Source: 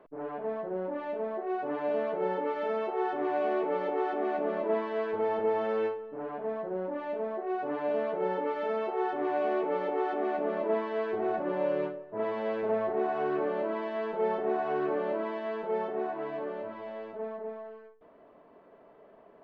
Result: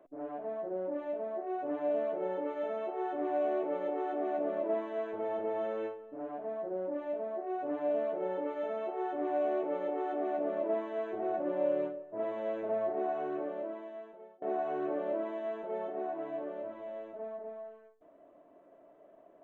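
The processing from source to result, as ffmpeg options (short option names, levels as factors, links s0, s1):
-filter_complex "[0:a]asplit=2[s0][s1];[s0]atrim=end=14.42,asetpts=PTS-STARTPTS,afade=t=out:st=13.08:d=1.34[s2];[s1]atrim=start=14.42,asetpts=PTS-STARTPTS,afade=t=in:d=0.004:c=hsin[s3];[s2][s3]concat=n=2:v=0:a=1,superequalizer=6b=2.51:8b=2.51:14b=0.316:15b=2.24,volume=0.376"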